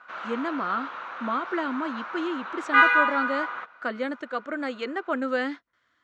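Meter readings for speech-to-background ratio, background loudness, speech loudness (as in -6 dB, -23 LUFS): -4.5 dB, -26.0 LUFS, -30.5 LUFS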